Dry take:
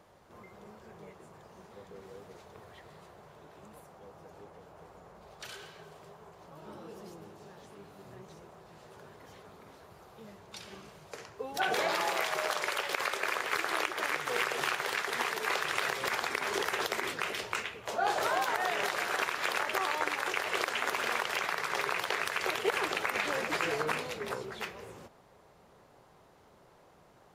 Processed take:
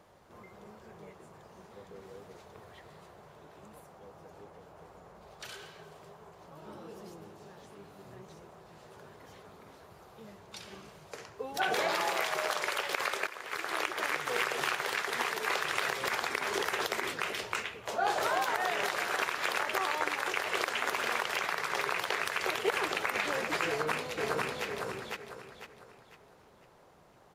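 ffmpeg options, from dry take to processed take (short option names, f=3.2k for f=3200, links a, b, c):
-filter_complex "[0:a]asplit=2[a][b];[b]afade=t=in:st=23.67:d=0.01,afade=t=out:st=24.66:d=0.01,aecho=0:1:500|1000|1500|2000|2500:0.841395|0.294488|0.103071|0.0360748|0.0126262[c];[a][c]amix=inputs=2:normalize=0,asplit=2[d][e];[d]atrim=end=13.27,asetpts=PTS-STARTPTS,afade=t=out:st=13.266:d=0.004:c=hsin:silence=0.16788[f];[e]atrim=start=13.27,asetpts=PTS-STARTPTS,afade=t=in:d=0.63:silence=0.16788[g];[f][g]concat=n=2:v=0:a=1"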